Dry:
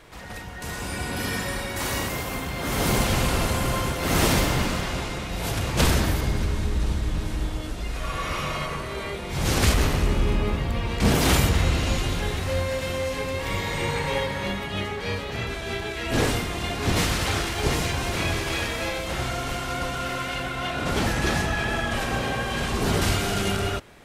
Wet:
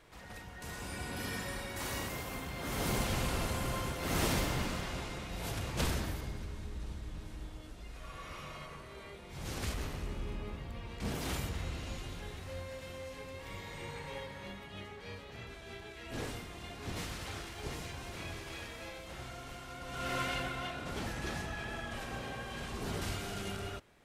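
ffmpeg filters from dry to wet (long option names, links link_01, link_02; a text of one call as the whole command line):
ffmpeg -i in.wav -af "volume=1.5dB,afade=type=out:start_time=5.5:duration=0.92:silence=0.473151,afade=type=in:start_time=19.85:duration=0.35:silence=0.237137,afade=type=out:start_time=20.2:duration=0.63:silence=0.316228" out.wav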